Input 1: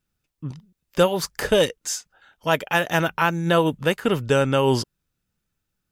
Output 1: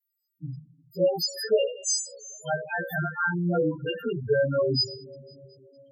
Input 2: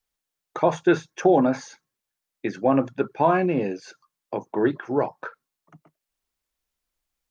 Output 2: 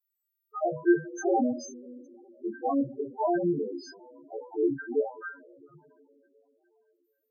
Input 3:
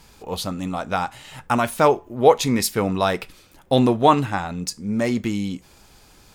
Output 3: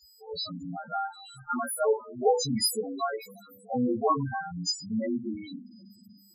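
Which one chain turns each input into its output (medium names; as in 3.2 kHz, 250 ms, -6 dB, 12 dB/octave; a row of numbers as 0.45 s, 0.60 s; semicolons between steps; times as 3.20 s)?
partials quantised in pitch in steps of 2 st; two-slope reverb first 0.37 s, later 4 s, from -19 dB, DRR 3 dB; loudest bins only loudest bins 4; peak normalisation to -12 dBFS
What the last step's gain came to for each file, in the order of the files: -4.5 dB, -5.0 dB, -8.5 dB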